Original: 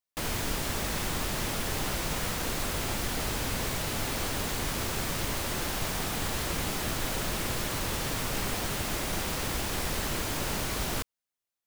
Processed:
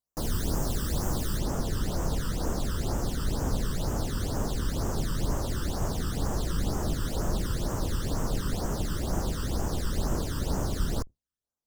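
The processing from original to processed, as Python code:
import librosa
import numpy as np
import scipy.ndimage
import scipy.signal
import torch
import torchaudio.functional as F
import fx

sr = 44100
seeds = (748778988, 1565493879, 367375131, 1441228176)

y = fx.octave_divider(x, sr, octaves=2, level_db=1.0)
y = fx.high_shelf(y, sr, hz=8800.0, db=fx.steps((0.0, -2.5), (1.37, -11.5)))
y = fx.phaser_stages(y, sr, stages=12, low_hz=690.0, high_hz=4100.0, hz=2.1, feedback_pct=20)
y = fx.peak_eq(y, sr, hz=2300.0, db=-14.5, octaves=0.8)
y = y * librosa.db_to_amplitude(2.5)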